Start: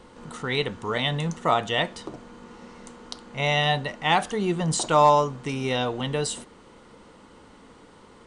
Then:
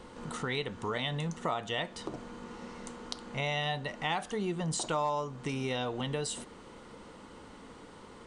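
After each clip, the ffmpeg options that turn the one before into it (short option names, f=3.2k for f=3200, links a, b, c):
-af "acompressor=threshold=-33dB:ratio=3"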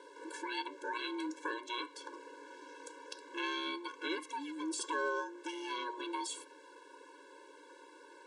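-af "aeval=exprs='val(0)*sin(2*PI*480*n/s)':c=same,afftfilt=real='re*eq(mod(floor(b*sr/1024/290),2),1)':imag='im*eq(mod(floor(b*sr/1024/290),2),1)':win_size=1024:overlap=0.75,volume=1.5dB"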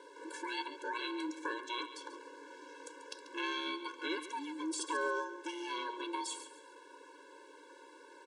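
-af "aecho=1:1:139|278|417:0.224|0.0716|0.0229"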